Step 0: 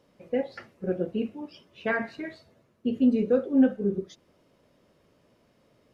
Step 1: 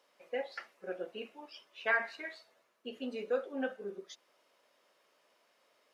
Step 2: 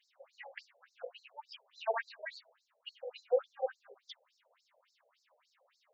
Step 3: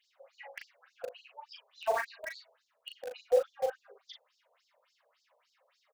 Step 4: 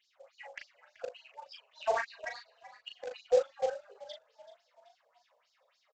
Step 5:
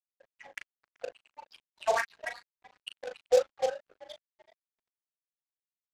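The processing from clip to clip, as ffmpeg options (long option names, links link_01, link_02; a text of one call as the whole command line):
ffmpeg -i in.wav -af "highpass=810" out.wav
ffmpeg -i in.wav -af "afftfilt=real='re*between(b*sr/1024,570*pow(5700/570,0.5+0.5*sin(2*PI*3.5*pts/sr))/1.41,570*pow(5700/570,0.5+0.5*sin(2*PI*3.5*pts/sr))*1.41)':imag='im*between(b*sr/1024,570*pow(5700/570,0.5+0.5*sin(2*PI*3.5*pts/sr))/1.41,570*pow(5700/570,0.5+0.5*sin(2*PI*3.5*pts/sr))*1.41)':win_size=1024:overlap=0.75,volume=4.5dB" out.wav
ffmpeg -i in.wav -filter_complex "[0:a]asplit=2[link_01][link_02];[link_02]acrusher=bits=5:mix=0:aa=0.000001,volume=-8dB[link_03];[link_01][link_03]amix=inputs=2:normalize=0,asplit=2[link_04][link_05];[link_05]adelay=38,volume=-5.5dB[link_06];[link_04][link_06]amix=inputs=2:normalize=0" out.wav
ffmpeg -i in.wav -filter_complex "[0:a]aresample=16000,acrusher=bits=6:mode=log:mix=0:aa=0.000001,aresample=44100,asplit=5[link_01][link_02][link_03][link_04][link_05];[link_02]adelay=381,afreqshift=48,volume=-18dB[link_06];[link_03]adelay=762,afreqshift=96,volume=-24.7dB[link_07];[link_04]adelay=1143,afreqshift=144,volume=-31.5dB[link_08];[link_05]adelay=1524,afreqshift=192,volume=-38.2dB[link_09];[link_01][link_06][link_07][link_08][link_09]amix=inputs=5:normalize=0" out.wav
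ffmpeg -i in.wav -af "aeval=exprs='sgn(val(0))*max(abs(val(0))-0.00237,0)':channel_layout=same,adynamicsmooth=sensitivity=6.5:basefreq=2200,crystalizer=i=3.5:c=0,volume=2.5dB" out.wav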